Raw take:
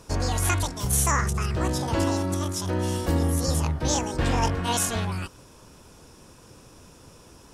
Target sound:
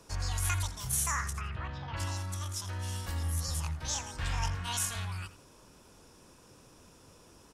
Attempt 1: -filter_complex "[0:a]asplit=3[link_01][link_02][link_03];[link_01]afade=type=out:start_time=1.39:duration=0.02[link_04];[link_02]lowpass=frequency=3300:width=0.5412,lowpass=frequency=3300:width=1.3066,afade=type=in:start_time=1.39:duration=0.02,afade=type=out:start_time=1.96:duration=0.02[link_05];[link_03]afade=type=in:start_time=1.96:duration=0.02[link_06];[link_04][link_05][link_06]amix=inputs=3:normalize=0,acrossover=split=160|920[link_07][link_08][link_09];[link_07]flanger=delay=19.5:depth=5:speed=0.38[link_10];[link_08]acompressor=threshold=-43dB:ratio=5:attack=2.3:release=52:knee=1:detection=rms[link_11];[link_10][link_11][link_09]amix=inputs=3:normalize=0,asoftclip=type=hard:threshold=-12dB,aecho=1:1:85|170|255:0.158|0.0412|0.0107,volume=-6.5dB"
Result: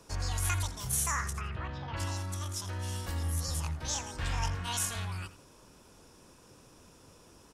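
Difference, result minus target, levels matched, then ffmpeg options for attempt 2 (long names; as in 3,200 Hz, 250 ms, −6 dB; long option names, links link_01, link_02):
downward compressor: peak gain reduction −5.5 dB
-filter_complex "[0:a]asplit=3[link_01][link_02][link_03];[link_01]afade=type=out:start_time=1.39:duration=0.02[link_04];[link_02]lowpass=frequency=3300:width=0.5412,lowpass=frequency=3300:width=1.3066,afade=type=in:start_time=1.39:duration=0.02,afade=type=out:start_time=1.96:duration=0.02[link_05];[link_03]afade=type=in:start_time=1.96:duration=0.02[link_06];[link_04][link_05][link_06]amix=inputs=3:normalize=0,acrossover=split=160|920[link_07][link_08][link_09];[link_07]flanger=delay=19.5:depth=5:speed=0.38[link_10];[link_08]acompressor=threshold=-50dB:ratio=5:attack=2.3:release=52:knee=1:detection=rms[link_11];[link_10][link_11][link_09]amix=inputs=3:normalize=0,asoftclip=type=hard:threshold=-12dB,aecho=1:1:85|170|255:0.158|0.0412|0.0107,volume=-6.5dB"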